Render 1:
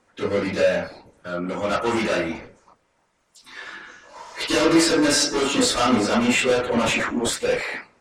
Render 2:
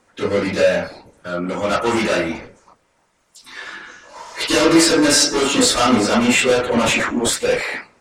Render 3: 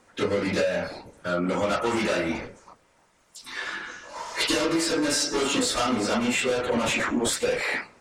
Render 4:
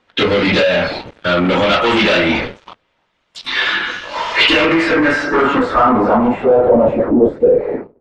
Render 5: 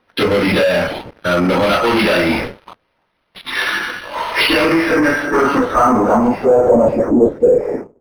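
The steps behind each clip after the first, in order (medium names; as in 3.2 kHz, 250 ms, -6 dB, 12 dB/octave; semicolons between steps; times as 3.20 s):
treble shelf 6.5 kHz +4.5 dB; trim +4 dB
compression 12:1, threshold -21 dBFS, peak gain reduction 13.5 dB
waveshaping leveller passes 3; low-pass sweep 3.4 kHz -> 430 Hz, 4.14–7.36 s; trim +3 dB
decimation joined by straight lines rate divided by 6×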